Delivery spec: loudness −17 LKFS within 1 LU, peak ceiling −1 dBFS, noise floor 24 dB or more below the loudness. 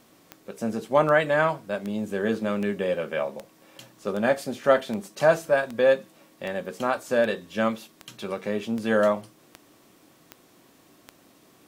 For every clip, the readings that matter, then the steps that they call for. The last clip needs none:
number of clicks 15; integrated loudness −25.5 LKFS; sample peak −6.5 dBFS; target loudness −17.0 LKFS
→ click removal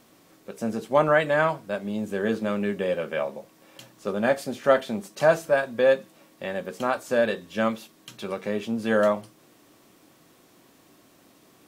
number of clicks 0; integrated loudness −25.5 LKFS; sample peak −6.5 dBFS; target loudness −17.0 LKFS
→ level +8.5 dB
brickwall limiter −1 dBFS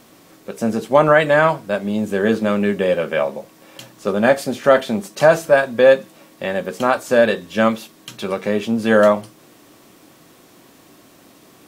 integrated loudness −17.5 LKFS; sample peak −1.0 dBFS; background noise floor −49 dBFS

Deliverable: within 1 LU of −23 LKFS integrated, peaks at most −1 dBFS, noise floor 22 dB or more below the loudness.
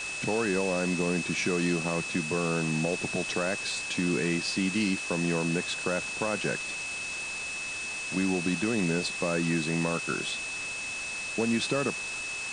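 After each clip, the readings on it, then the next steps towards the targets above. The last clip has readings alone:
interfering tone 2,600 Hz; level of the tone −34 dBFS; background noise floor −36 dBFS; target noise floor −51 dBFS; integrated loudness −29.0 LKFS; sample peak −15.0 dBFS; target loudness −23.0 LKFS
→ notch filter 2,600 Hz, Q 30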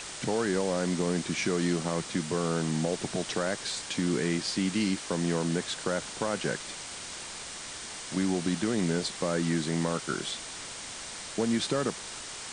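interfering tone none found; background noise floor −41 dBFS; target noise floor −53 dBFS
→ broadband denoise 12 dB, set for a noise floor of −41 dBFS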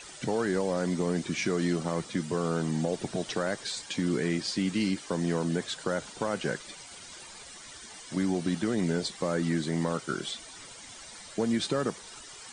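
background noise floor −47 dBFS; target noise floor −53 dBFS
→ broadband denoise 6 dB, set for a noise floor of −47 dBFS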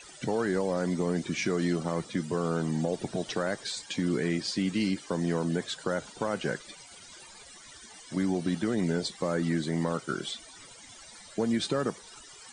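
background noise floor −50 dBFS; target noise floor −53 dBFS
→ broadband denoise 6 dB, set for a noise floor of −50 dBFS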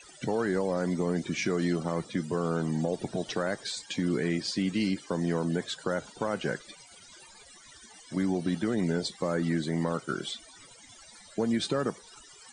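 background noise floor −53 dBFS; integrated loudness −30.5 LKFS; sample peak −16.5 dBFS; target loudness −23.0 LKFS
→ level +7.5 dB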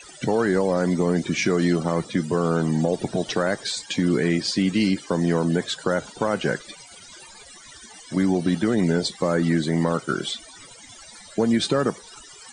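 integrated loudness −23.0 LKFS; sample peak −9.0 dBFS; background noise floor −45 dBFS

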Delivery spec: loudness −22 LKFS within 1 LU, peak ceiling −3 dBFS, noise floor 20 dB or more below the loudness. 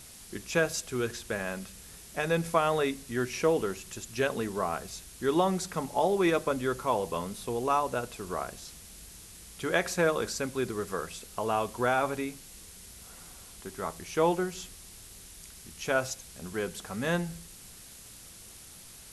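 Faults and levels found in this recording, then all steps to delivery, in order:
background noise floor −50 dBFS; target noise floor −51 dBFS; integrated loudness −30.5 LKFS; sample peak −10.5 dBFS; target loudness −22.0 LKFS
→ broadband denoise 6 dB, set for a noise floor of −50 dBFS
level +8.5 dB
brickwall limiter −3 dBFS

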